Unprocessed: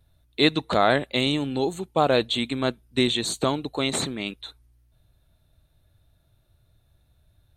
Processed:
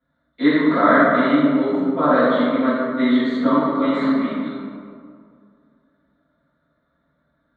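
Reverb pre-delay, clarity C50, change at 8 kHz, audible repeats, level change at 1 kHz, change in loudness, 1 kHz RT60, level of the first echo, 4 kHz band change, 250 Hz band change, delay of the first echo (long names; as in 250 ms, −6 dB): 3 ms, −3.0 dB, below −25 dB, no echo audible, +6.5 dB, +6.0 dB, 2.2 s, no echo audible, −9.0 dB, +10.5 dB, no echo audible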